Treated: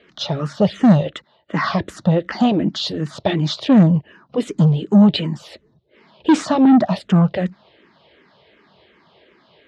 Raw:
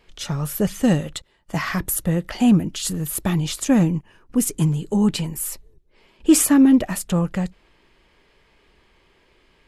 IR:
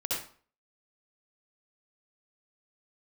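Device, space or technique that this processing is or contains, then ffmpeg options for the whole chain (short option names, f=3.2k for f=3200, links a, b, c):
barber-pole phaser into a guitar amplifier: -filter_complex "[0:a]highpass=87,asettb=1/sr,asplit=3[a][b][c];[a]atrim=end=1.104[d];[b]atrim=start=1.1:end=1.64,asetpts=PTS-STARTPTS,afade=t=in:d=0.004:c=qsin,afade=t=out:st=0.536:d=0.004:c=qsin,bass=f=250:g=-5,treble=f=4k:g=-5[e];[c]atrim=start=1.636[f];[d][e]acrossfade=d=0.004:c1=hsin:c2=qsin[g];[g][f]acrossfade=d=0.004:c1=qsin:c2=hsin,asplit=2[h][i];[i]afreqshift=-2.7[j];[h][j]amix=inputs=2:normalize=1,asoftclip=type=tanh:threshold=-17.5dB,highpass=94,equalizer=f=200:t=q:w=4:g=4,equalizer=f=630:t=q:w=4:g=7,equalizer=f=2.4k:t=q:w=4:g=-5,equalizer=f=3.8k:t=q:w=4:g=4,lowpass=f=4.5k:w=0.5412,lowpass=f=4.5k:w=1.3066,volume=9dB"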